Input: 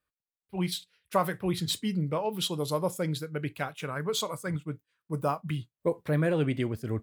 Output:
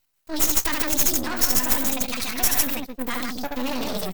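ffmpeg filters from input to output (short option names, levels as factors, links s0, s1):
-filter_complex "[0:a]equalizer=f=250:t=o:w=0.33:g=-5,equalizer=f=500:t=o:w=0.33:g=-7,equalizer=f=2500:t=o:w=0.33:g=3,aeval=exprs='0.224*sin(PI/2*2*val(0)/0.224)':c=same,asplit=2[s0][s1];[s1]aecho=0:1:119.5|259.5:0.562|0.631[s2];[s0][s2]amix=inputs=2:normalize=0,alimiter=limit=0.158:level=0:latency=1:release=21,asetrate=74167,aresample=44100,atempo=0.594604,bandreject=f=352.2:t=h:w=4,bandreject=f=704.4:t=h:w=4,bandreject=f=1056.6:t=h:w=4,atempo=1.7,aemphasis=mode=production:type=75fm,aeval=exprs='max(val(0),0)':c=same"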